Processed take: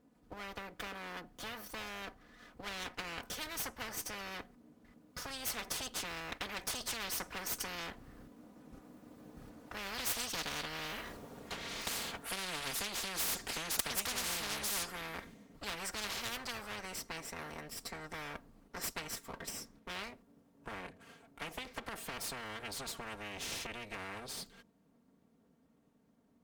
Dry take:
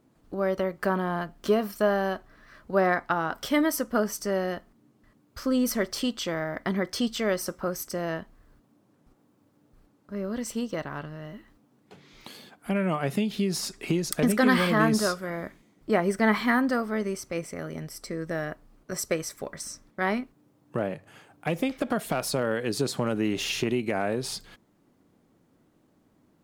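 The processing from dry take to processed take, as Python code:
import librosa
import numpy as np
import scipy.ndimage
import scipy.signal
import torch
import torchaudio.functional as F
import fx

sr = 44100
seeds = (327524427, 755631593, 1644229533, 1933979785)

y = fx.lower_of_two(x, sr, delay_ms=4.2)
y = fx.doppler_pass(y, sr, speed_mps=13, closest_m=10.0, pass_at_s=11.07)
y = fx.highpass(y, sr, hz=92.0, slope=6)
y = fx.low_shelf(y, sr, hz=400.0, db=6.5)
y = fx.spectral_comp(y, sr, ratio=10.0)
y = F.gain(torch.from_numpy(y), 10.5).numpy()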